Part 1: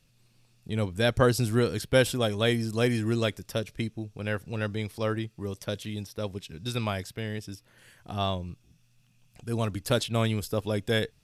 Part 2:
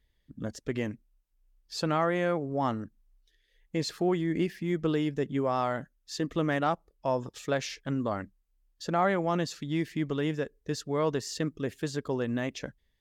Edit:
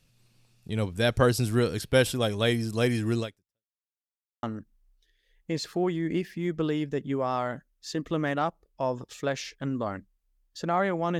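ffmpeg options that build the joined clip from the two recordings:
-filter_complex "[0:a]apad=whole_dur=11.19,atrim=end=11.19,asplit=2[a][b];[a]atrim=end=3.81,asetpts=PTS-STARTPTS,afade=t=out:st=3.2:d=0.61:c=exp[c];[b]atrim=start=3.81:end=4.43,asetpts=PTS-STARTPTS,volume=0[d];[1:a]atrim=start=2.68:end=9.44,asetpts=PTS-STARTPTS,afade=t=in:d=0.004:c=hsin[e];[c][d][e]concat=n=3:v=0:a=1"

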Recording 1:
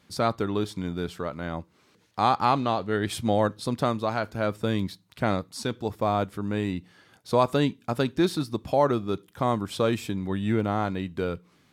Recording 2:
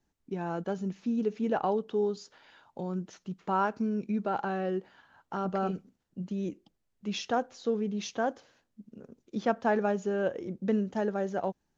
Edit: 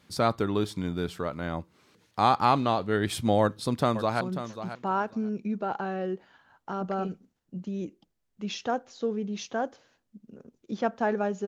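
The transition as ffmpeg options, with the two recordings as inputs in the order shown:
-filter_complex "[0:a]apad=whole_dur=11.47,atrim=end=11.47,atrim=end=4.212[a];[1:a]atrim=start=2.848:end=10.11[b];[a][b]acrossfade=d=0.004:c1=hsin:c2=hsin,asplit=2[c][d];[d]afade=t=in:st=3.41:d=0.01,afade=t=out:st=4.21:d=0.01,aecho=0:1:540|1080:0.281838|0.0422757[e];[c][e]amix=inputs=2:normalize=0"

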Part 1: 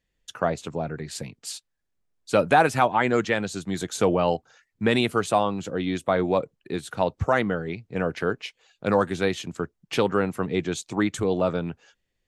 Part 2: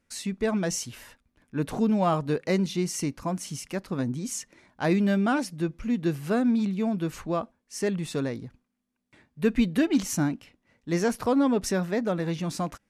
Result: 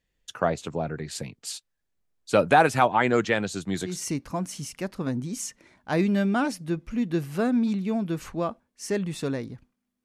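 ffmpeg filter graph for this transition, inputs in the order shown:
-filter_complex "[0:a]apad=whole_dur=10.04,atrim=end=10.04,atrim=end=4.02,asetpts=PTS-STARTPTS[a];[1:a]atrim=start=2.72:end=8.96,asetpts=PTS-STARTPTS[b];[a][b]acrossfade=d=0.22:c1=tri:c2=tri"

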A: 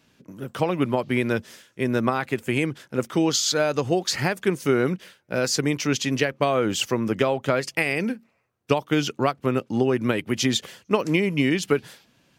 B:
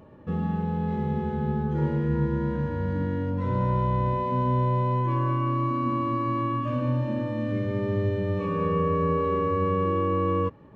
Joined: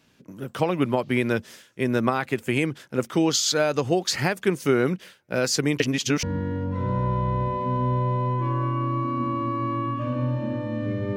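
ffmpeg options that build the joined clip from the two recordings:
-filter_complex "[0:a]apad=whole_dur=11.16,atrim=end=11.16,asplit=2[a][b];[a]atrim=end=5.802[c];[b]atrim=start=5.798:end=6.232,asetpts=PTS-STARTPTS,areverse[d];[1:a]atrim=start=2.888:end=7.82[e];[c][d]acrossfade=d=0.004:c1=hsin:c2=hsin[f];[f][e]acrossfade=d=0.004:c1=hsin:c2=hsin"

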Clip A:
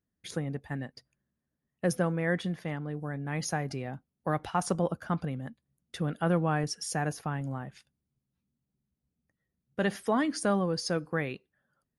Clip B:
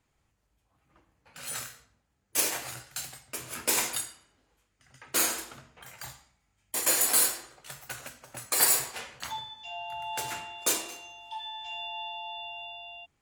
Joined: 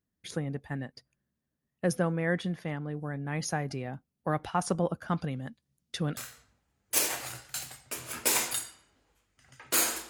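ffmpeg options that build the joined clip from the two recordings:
-filter_complex "[0:a]asettb=1/sr,asplit=3[a][b][c];[a]atrim=end=5.084[d];[b]atrim=start=5.08:end=6.17,asetpts=PTS-STARTPTS,afade=t=in:d=0.004:c=qsin,afade=t=out:st=1.086:d=0.004:c=qsin,equalizer=f=5.1k:t=o:w=1.8:g=7.5[e];[c]atrim=start=6.166[f];[d][e]acrossfade=d=0.004:c1=hsin:c2=qsin[g];[g][f]acrossfade=d=0.004:c1=qsin:c2=hsin,apad=whole_dur=10.09,atrim=end=10.09,atrim=end=6.172[h];[1:a]atrim=start=1.588:end=5.51[i];[h][i]acrossfade=d=0.004:c1=hsin:c2=hsin"

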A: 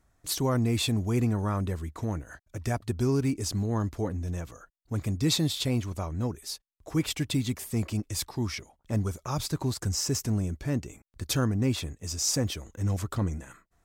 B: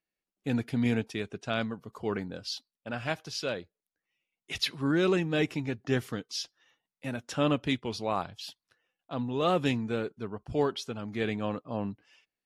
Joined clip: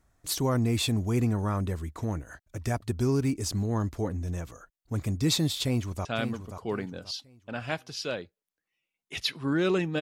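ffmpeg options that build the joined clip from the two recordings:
-filter_complex "[0:a]apad=whole_dur=10.01,atrim=end=10.01,atrim=end=6.052[a];[1:a]atrim=start=1.428:end=5.39[b];[a][b]acrossfade=d=0.004:c1=hsin:c2=hsin,asplit=2[c][d];[d]afade=t=in:st=5.63:d=0.01,afade=t=out:st=6.05:d=0.01,aecho=0:1:530|1060|1590|2120:0.375837|0.112751|0.0338254|0.0101476[e];[c][e]amix=inputs=2:normalize=0"

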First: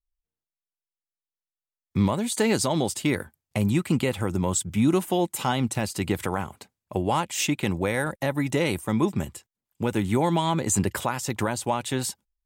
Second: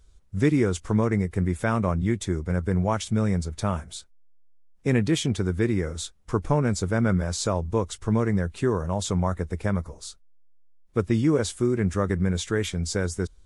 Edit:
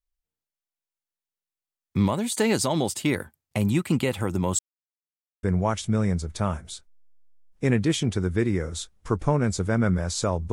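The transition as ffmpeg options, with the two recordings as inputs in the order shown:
-filter_complex "[0:a]apad=whole_dur=10.52,atrim=end=10.52,asplit=2[a][b];[a]atrim=end=4.59,asetpts=PTS-STARTPTS,afade=t=out:st=4.586:d=0.004:c=hsin[c];[b]atrim=start=4.59:end=5.43,asetpts=PTS-STARTPTS,volume=0[d];[1:a]atrim=start=2.66:end=7.75,asetpts=PTS-STARTPTS,afade=t=in:d=0.004:c=hsin[e];[c][d][e]concat=n=3:v=0:a=1"

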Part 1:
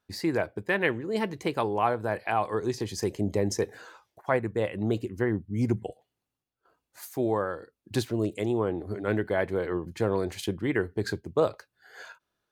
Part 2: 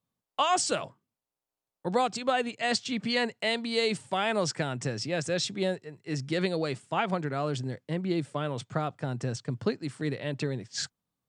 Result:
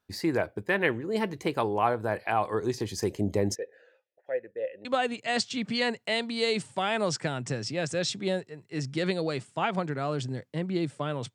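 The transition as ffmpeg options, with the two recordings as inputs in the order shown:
-filter_complex "[0:a]asplit=3[a][b][c];[a]afade=t=out:st=3.54:d=0.02[d];[b]asplit=3[e][f][g];[e]bandpass=f=530:t=q:w=8,volume=0dB[h];[f]bandpass=f=1.84k:t=q:w=8,volume=-6dB[i];[g]bandpass=f=2.48k:t=q:w=8,volume=-9dB[j];[h][i][j]amix=inputs=3:normalize=0,afade=t=in:st=3.54:d=0.02,afade=t=out:st=4.85:d=0.02[k];[c]afade=t=in:st=4.85:d=0.02[l];[d][k][l]amix=inputs=3:normalize=0,apad=whole_dur=11.34,atrim=end=11.34,atrim=end=4.852[m];[1:a]atrim=start=2.198:end=8.69[n];[m][n]acrossfade=d=0.004:c1=hsin:c2=hsin"

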